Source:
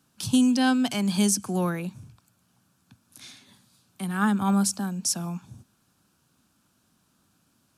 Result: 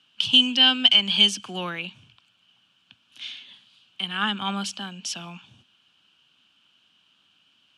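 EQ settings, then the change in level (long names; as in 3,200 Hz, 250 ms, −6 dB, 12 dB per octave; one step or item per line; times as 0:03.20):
low-pass with resonance 3,000 Hz, resonance Q 10
spectral tilt +3 dB per octave
−2.0 dB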